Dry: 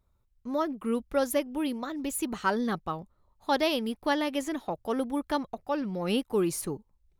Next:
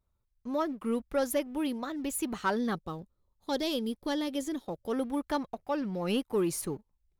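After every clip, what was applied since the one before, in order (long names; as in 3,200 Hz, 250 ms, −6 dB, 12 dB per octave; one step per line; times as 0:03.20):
leveller curve on the samples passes 1
gain on a spectral selection 0:02.74–0:04.92, 560–3,100 Hz −7 dB
level −5 dB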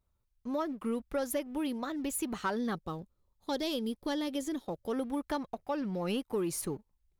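downward compressor 3 to 1, threshold −30 dBFS, peak gain reduction 5 dB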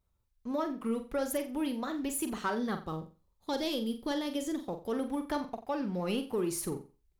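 flutter between parallel walls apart 7.6 metres, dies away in 0.32 s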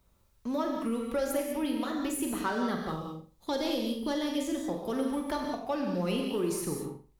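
reverb whose tail is shaped and stops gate 220 ms flat, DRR 2 dB
multiband upward and downward compressor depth 40%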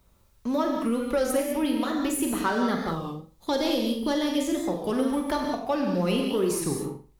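wow of a warped record 33 1/3 rpm, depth 100 cents
level +5.5 dB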